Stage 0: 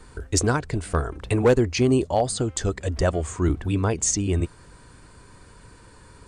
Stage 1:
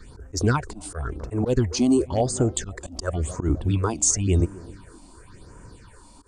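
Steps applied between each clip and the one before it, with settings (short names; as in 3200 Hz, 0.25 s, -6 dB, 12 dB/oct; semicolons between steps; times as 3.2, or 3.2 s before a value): tape echo 0.26 s, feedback 68%, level -18 dB, low-pass 1000 Hz; auto swell 0.135 s; phaser stages 6, 0.94 Hz, lowest notch 110–4000 Hz; gain +2.5 dB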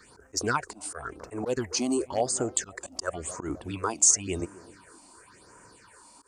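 HPF 860 Hz 6 dB/oct; bell 3500 Hz -7 dB 0.48 oct; gain +1.5 dB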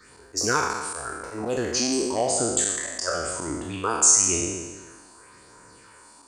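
spectral trails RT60 1.28 s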